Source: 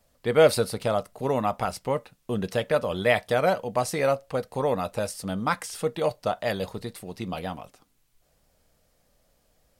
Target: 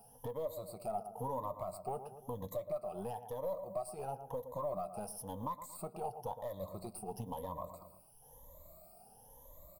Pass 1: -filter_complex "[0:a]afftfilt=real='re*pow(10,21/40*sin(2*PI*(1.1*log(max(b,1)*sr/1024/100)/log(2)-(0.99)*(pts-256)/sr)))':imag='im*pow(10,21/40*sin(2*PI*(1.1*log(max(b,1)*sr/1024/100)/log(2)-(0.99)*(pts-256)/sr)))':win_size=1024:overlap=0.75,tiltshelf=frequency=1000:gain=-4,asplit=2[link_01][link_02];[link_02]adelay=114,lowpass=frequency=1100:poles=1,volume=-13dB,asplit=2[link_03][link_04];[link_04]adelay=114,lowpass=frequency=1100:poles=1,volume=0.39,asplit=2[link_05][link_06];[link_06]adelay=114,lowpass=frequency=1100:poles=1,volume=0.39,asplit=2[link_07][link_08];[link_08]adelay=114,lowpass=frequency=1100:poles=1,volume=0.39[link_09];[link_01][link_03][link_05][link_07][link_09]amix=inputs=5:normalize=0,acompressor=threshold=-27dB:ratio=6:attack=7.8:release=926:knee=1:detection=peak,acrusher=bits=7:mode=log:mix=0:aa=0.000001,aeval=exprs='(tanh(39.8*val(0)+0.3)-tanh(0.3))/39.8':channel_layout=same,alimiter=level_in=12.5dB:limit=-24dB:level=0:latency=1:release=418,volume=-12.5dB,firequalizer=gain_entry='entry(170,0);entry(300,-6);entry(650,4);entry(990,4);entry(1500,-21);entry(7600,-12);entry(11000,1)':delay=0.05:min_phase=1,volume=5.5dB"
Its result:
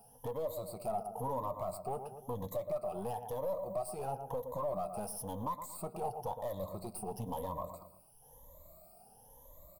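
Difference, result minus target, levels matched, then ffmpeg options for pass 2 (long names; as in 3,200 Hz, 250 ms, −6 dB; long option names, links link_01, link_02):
downward compressor: peak gain reduction −6 dB
-filter_complex "[0:a]afftfilt=real='re*pow(10,21/40*sin(2*PI*(1.1*log(max(b,1)*sr/1024/100)/log(2)-(0.99)*(pts-256)/sr)))':imag='im*pow(10,21/40*sin(2*PI*(1.1*log(max(b,1)*sr/1024/100)/log(2)-(0.99)*(pts-256)/sr)))':win_size=1024:overlap=0.75,tiltshelf=frequency=1000:gain=-4,asplit=2[link_01][link_02];[link_02]adelay=114,lowpass=frequency=1100:poles=1,volume=-13dB,asplit=2[link_03][link_04];[link_04]adelay=114,lowpass=frequency=1100:poles=1,volume=0.39,asplit=2[link_05][link_06];[link_06]adelay=114,lowpass=frequency=1100:poles=1,volume=0.39,asplit=2[link_07][link_08];[link_08]adelay=114,lowpass=frequency=1100:poles=1,volume=0.39[link_09];[link_01][link_03][link_05][link_07][link_09]amix=inputs=5:normalize=0,acompressor=threshold=-34.5dB:ratio=6:attack=7.8:release=926:knee=1:detection=peak,acrusher=bits=7:mode=log:mix=0:aa=0.000001,aeval=exprs='(tanh(39.8*val(0)+0.3)-tanh(0.3))/39.8':channel_layout=same,alimiter=level_in=12.5dB:limit=-24dB:level=0:latency=1:release=418,volume=-12.5dB,firequalizer=gain_entry='entry(170,0);entry(300,-6);entry(650,4);entry(990,4);entry(1500,-21);entry(7600,-12);entry(11000,1)':delay=0.05:min_phase=1,volume=5.5dB"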